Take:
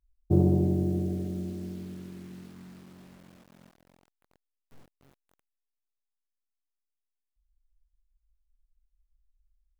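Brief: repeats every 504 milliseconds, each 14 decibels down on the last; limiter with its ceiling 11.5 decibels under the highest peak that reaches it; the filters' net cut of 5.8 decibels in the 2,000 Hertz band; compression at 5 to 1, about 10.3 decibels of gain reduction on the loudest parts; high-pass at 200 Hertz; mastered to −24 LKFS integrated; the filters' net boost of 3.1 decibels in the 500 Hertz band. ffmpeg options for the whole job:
ffmpeg -i in.wav -af "highpass=200,equalizer=frequency=500:width_type=o:gain=6,equalizer=frequency=2000:width_type=o:gain=-8,acompressor=threshold=-31dB:ratio=5,alimiter=level_in=9.5dB:limit=-24dB:level=0:latency=1,volume=-9.5dB,aecho=1:1:504|1008:0.2|0.0399,volume=19.5dB" out.wav

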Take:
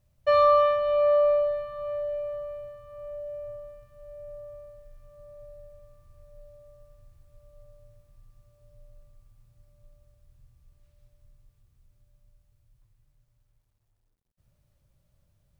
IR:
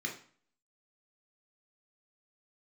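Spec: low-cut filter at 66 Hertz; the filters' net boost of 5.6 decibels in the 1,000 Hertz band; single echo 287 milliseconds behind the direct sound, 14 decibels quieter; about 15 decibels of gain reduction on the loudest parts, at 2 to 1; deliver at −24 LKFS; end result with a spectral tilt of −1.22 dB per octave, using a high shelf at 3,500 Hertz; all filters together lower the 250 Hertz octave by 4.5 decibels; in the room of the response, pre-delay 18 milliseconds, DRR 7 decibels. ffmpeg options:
-filter_complex "[0:a]highpass=66,equalizer=frequency=250:width_type=o:gain=-8,equalizer=frequency=1000:width_type=o:gain=8,highshelf=frequency=3500:gain=-6.5,acompressor=threshold=-41dB:ratio=2,aecho=1:1:287:0.2,asplit=2[link_01][link_02];[1:a]atrim=start_sample=2205,adelay=18[link_03];[link_02][link_03]afir=irnorm=-1:irlink=0,volume=-9.5dB[link_04];[link_01][link_04]amix=inputs=2:normalize=0,volume=12dB"

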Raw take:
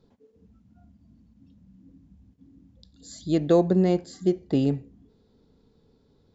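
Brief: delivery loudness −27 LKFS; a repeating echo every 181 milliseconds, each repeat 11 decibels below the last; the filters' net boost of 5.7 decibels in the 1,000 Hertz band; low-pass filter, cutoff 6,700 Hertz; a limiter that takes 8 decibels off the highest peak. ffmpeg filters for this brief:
ffmpeg -i in.wav -af "lowpass=6700,equalizer=frequency=1000:width_type=o:gain=9,alimiter=limit=-15dB:level=0:latency=1,aecho=1:1:181|362|543:0.282|0.0789|0.0221,volume=-0.5dB" out.wav

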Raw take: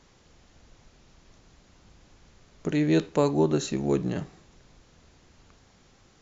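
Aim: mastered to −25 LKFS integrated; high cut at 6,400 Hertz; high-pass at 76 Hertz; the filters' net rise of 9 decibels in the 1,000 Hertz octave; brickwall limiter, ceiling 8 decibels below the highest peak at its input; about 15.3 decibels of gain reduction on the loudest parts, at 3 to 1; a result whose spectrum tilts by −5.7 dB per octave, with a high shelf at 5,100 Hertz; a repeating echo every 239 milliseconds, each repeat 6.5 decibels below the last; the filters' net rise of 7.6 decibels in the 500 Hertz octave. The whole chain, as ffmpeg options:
ffmpeg -i in.wav -af "highpass=76,lowpass=6400,equalizer=frequency=500:width_type=o:gain=8,equalizer=frequency=1000:width_type=o:gain=8,highshelf=frequency=5100:gain=7.5,acompressor=threshold=-33dB:ratio=3,alimiter=level_in=1.5dB:limit=-24dB:level=0:latency=1,volume=-1.5dB,aecho=1:1:239|478|717|956|1195|1434:0.473|0.222|0.105|0.0491|0.0231|0.0109,volume=12dB" out.wav

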